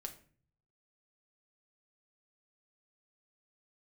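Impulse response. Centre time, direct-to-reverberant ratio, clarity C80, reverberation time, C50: 9 ms, 3.5 dB, 16.5 dB, 0.45 s, 12.5 dB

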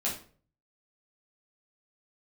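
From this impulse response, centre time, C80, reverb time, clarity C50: 28 ms, 12.0 dB, 0.45 s, 6.5 dB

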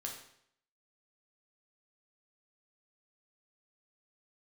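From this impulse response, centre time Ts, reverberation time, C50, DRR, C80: 30 ms, 0.70 s, 5.0 dB, -0.5 dB, 8.5 dB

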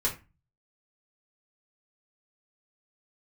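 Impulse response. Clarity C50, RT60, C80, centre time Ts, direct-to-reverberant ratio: 11.0 dB, 0.25 s, 18.0 dB, 17 ms, -4.0 dB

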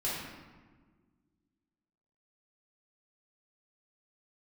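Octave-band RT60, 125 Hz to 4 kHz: 2.1, 2.3, 1.7, 1.4, 1.2, 0.85 s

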